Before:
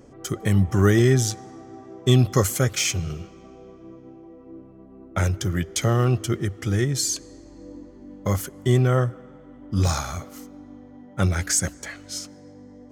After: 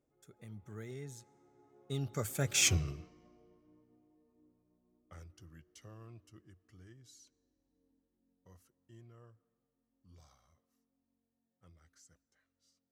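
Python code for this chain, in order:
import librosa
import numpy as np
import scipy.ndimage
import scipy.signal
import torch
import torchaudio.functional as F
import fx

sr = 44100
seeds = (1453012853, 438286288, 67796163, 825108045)

y = fx.doppler_pass(x, sr, speed_mps=28, closest_m=2.6, pass_at_s=2.68)
y = F.gain(torch.from_numpy(y), -2.5).numpy()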